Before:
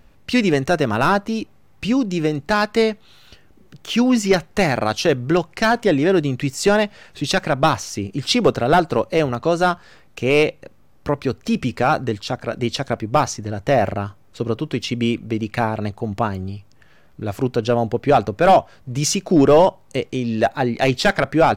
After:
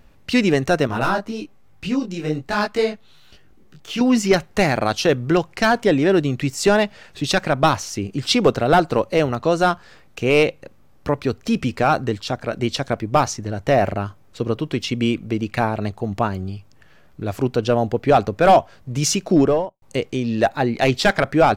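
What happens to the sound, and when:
0:00.87–0:04.01: micro pitch shift up and down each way 40 cents
0:19.26–0:19.82: fade out and dull

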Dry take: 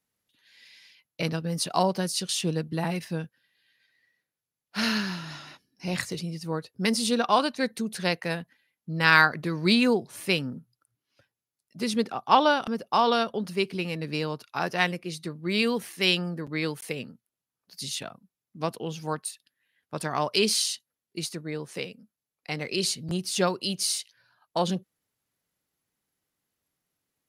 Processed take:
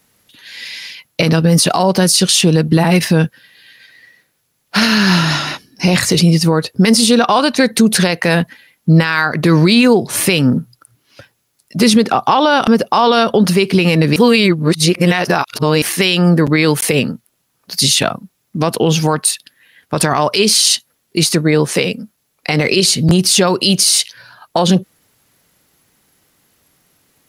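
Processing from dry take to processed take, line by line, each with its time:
0:14.16–0:15.82: reverse
whole clip: downward compressor 6 to 1, threshold −27 dBFS; boost into a limiter +25.5 dB; level −1 dB

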